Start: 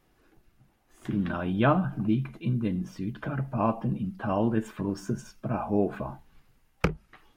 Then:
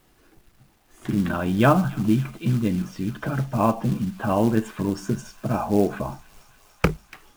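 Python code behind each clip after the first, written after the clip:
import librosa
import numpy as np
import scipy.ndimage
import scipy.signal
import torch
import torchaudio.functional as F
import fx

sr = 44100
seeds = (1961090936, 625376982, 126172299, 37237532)

y = fx.quant_companded(x, sr, bits=6)
y = fx.echo_wet_highpass(y, sr, ms=288, feedback_pct=81, hz=2300.0, wet_db=-15.0)
y = F.gain(torch.from_numpy(y), 5.5).numpy()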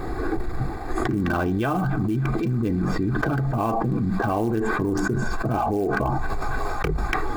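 y = fx.wiener(x, sr, points=15)
y = y + 0.5 * np.pad(y, (int(2.6 * sr / 1000.0), 0))[:len(y)]
y = fx.env_flatten(y, sr, amount_pct=100)
y = F.gain(torch.from_numpy(y), -9.0).numpy()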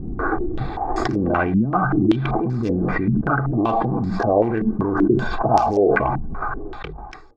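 y = fx.fade_out_tail(x, sr, length_s=1.44)
y = fx.dynamic_eq(y, sr, hz=780.0, q=0.92, threshold_db=-36.0, ratio=4.0, max_db=5)
y = fx.filter_held_lowpass(y, sr, hz=5.2, low_hz=210.0, high_hz=5500.0)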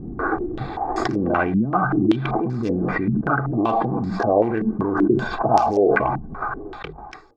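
y = fx.low_shelf(x, sr, hz=77.0, db=-11.5)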